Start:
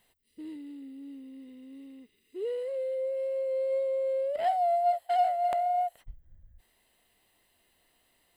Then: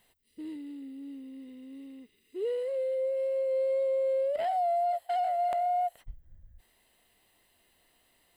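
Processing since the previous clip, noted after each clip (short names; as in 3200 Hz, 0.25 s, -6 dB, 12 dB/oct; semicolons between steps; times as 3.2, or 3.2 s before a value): limiter -25.5 dBFS, peak gain reduction 8 dB; gain +1.5 dB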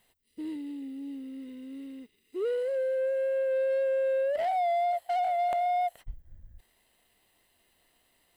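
sample leveller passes 1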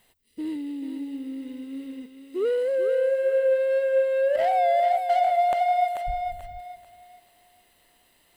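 thinning echo 0.439 s, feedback 32%, high-pass 370 Hz, level -6 dB; gain +5.5 dB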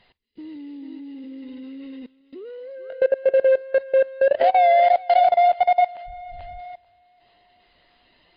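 bin magnitudes rounded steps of 15 dB; level quantiser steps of 22 dB; gain +8 dB; MP3 32 kbps 11025 Hz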